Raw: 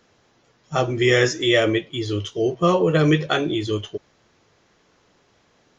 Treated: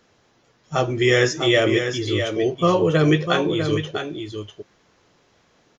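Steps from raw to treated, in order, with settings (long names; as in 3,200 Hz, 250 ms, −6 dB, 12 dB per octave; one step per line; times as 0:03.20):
single-tap delay 649 ms −7.5 dB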